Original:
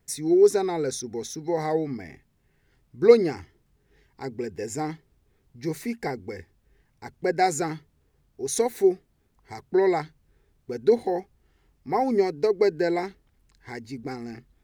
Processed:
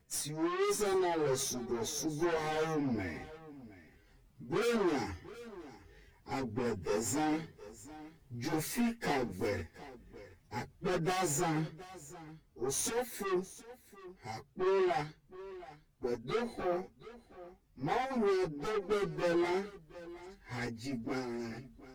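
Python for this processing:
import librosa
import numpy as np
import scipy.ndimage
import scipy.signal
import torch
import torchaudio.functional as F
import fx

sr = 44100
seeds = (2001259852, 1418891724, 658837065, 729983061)

p1 = fx.rider(x, sr, range_db=4, speed_s=2.0)
p2 = fx.tube_stage(p1, sr, drive_db=30.0, bias=0.5)
p3 = fx.stretch_vocoder_free(p2, sr, factor=1.5)
p4 = p3 + fx.echo_single(p3, sr, ms=721, db=-17.5, dry=0)
y = F.gain(torch.from_numpy(p4), 3.0).numpy()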